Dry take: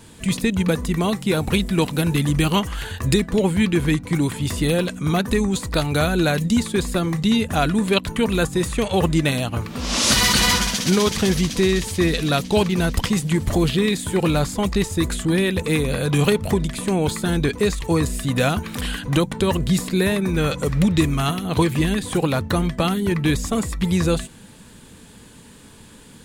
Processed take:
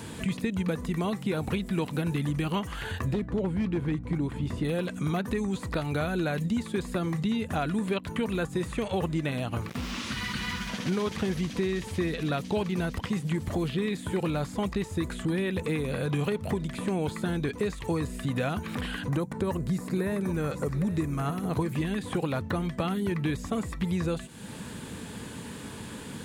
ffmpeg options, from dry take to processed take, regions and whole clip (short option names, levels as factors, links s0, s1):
-filter_complex "[0:a]asettb=1/sr,asplit=3[s0][s1][s2];[s0]atrim=end=3.124[s3];[s1]atrim=start=3.12:end=4.65,asetpts=PTS-STARTPTS,afade=t=in:d=0.004:c=qsin,afade=t=out:st=1.526:d=0.004:c=qsin,aeval=exprs='0.266*(abs(mod(val(0)/0.266+3,4)-2)-1)':c=same,lowpass=f=1100:p=1,aeval=exprs='val(0)+0.0355*(sin(2*PI*60*n/s)+sin(2*PI*2*60*n/s)/2+sin(2*PI*3*60*n/s)/3+sin(2*PI*4*60*n/s)/4+sin(2*PI*5*60*n/s)/5)':c=same[s4];[s2]atrim=start=4.646[s5];[s3][s4]acrossfade=d=0.004:c1=hsin:c2=qsin[s6];[s6][s5]acrossfade=d=0.004:c1=qsin:c2=hsin,asettb=1/sr,asplit=3[s7][s8][s9];[s7]atrim=end=9.694[s10];[s8]atrim=start=9.69:end=10.69,asetpts=PTS-STARTPTS,afade=t=in:d=0.004:c=qsin,afade=t=out:st=0.996:d=0.004:c=qsin,equalizer=f=610:t=o:w=1.3:g=-14,acrusher=bits=4:mix=0:aa=0.5[s11];[s9]atrim=start=10.686[s12];[s10][s11]acrossfade=d=0.004:c1=hsin:c2=qsin[s13];[s13][s12]acrossfade=d=0.004:c1=qsin:c2=hsin,asettb=1/sr,asplit=3[s14][s15][s16];[s14]atrim=end=19.084[s17];[s15]atrim=start=19.08:end=21.73,asetpts=PTS-STARTPTS,afade=t=in:d=0.004:c=qsin,afade=t=out:st=2.646:d=0.004:c=qsin,equalizer=f=3200:w=1.5:g=-10.5,aecho=1:1:805:0.178,atrim=end_sample=116865[s18];[s16]atrim=start=21.726[s19];[s17][s18]acrossfade=d=0.004:c1=hsin:c2=qsin[s20];[s20][s19]acrossfade=d=0.004:c1=qsin:c2=hsin,acompressor=threshold=0.0126:ratio=3,highpass=71,acrossover=split=2900[s21][s22];[s22]acompressor=threshold=0.00224:ratio=4:attack=1:release=60[s23];[s21][s23]amix=inputs=2:normalize=0,volume=2.11"